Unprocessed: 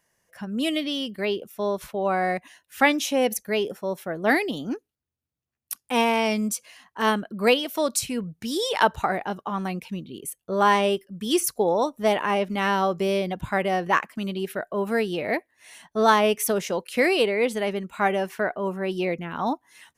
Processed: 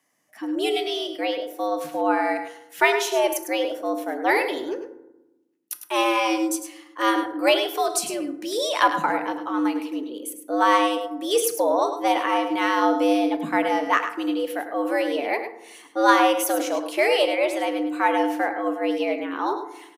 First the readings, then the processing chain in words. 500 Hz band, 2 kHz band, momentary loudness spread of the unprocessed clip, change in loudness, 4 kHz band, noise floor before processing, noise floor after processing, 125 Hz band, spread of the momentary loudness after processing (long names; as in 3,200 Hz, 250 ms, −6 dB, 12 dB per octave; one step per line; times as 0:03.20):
+1.0 dB, +1.0 dB, 10 LU, +1.5 dB, +1.5 dB, −83 dBFS, −54 dBFS, −17.0 dB, 10 LU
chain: frequency shifter +110 Hz
feedback delay network reverb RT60 0.95 s, low-frequency decay 1.6×, high-frequency decay 0.45×, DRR 8.5 dB
harmonic generator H 2 −30 dB, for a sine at −3.5 dBFS
on a send: single-tap delay 103 ms −9.5 dB